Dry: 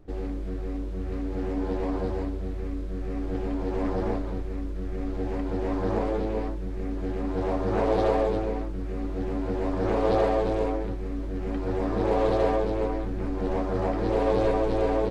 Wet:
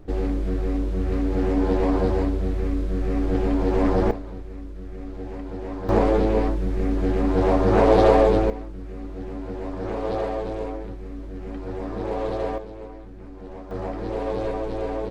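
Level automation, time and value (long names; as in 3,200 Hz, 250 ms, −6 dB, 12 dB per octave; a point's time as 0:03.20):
+7.5 dB
from 0:04.11 −4 dB
from 0:05.89 +8 dB
from 0:08.50 −3.5 dB
from 0:12.58 −11 dB
from 0:13.71 −3.5 dB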